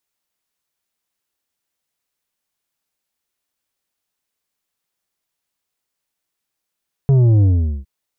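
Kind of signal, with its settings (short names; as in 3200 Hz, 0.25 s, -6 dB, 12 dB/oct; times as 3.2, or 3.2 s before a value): sub drop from 140 Hz, over 0.76 s, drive 7.5 dB, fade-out 0.42 s, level -10 dB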